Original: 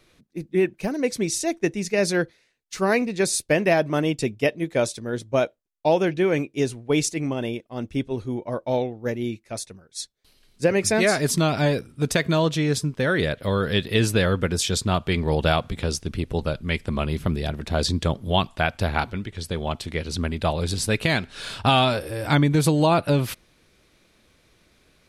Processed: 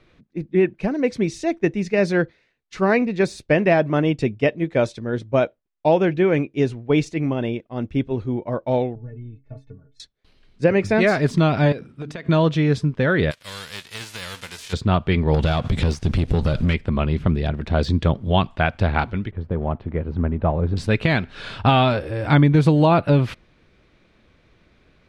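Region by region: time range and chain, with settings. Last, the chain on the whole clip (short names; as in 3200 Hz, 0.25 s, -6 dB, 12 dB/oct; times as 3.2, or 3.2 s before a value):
8.95–10 compressor, threshold -35 dBFS + tilt -4.5 dB/oct + metallic resonator 130 Hz, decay 0.25 s, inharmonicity 0.03
11.72–12.29 HPF 200 Hz 6 dB/oct + notches 50/100/150/200/250/300 Hz + compressor 8:1, threshold -31 dBFS
13.3–14.72 spectral whitening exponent 0.3 + pre-emphasis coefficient 0.9
15.34–16.74 tone controls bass +3 dB, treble +14 dB + compressor, threshold -29 dBFS + sample leveller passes 3
19.31–20.77 block floating point 5-bit + LPF 1100 Hz
whole clip: LPF 6800 Hz 12 dB/oct; de-esser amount 55%; tone controls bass +3 dB, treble -12 dB; gain +2.5 dB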